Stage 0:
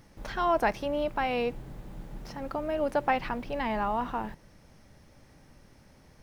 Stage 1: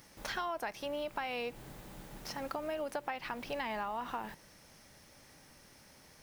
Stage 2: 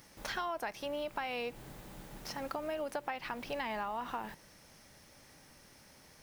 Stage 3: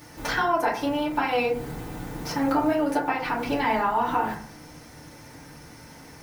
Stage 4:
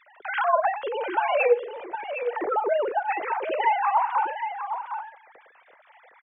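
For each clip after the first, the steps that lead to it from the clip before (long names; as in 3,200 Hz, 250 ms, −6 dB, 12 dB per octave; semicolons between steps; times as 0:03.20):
spectral tilt +2.5 dB per octave; downward compressor 12 to 1, threshold −34 dBFS, peak gain reduction 14 dB
no processing that can be heard
feedback delay network reverb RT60 0.51 s, low-frequency decay 1.4×, high-frequency decay 0.35×, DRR −7.5 dB; level +5 dB
three sine waves on the formant tracks; single-tap delay 760 ms −8.5 dB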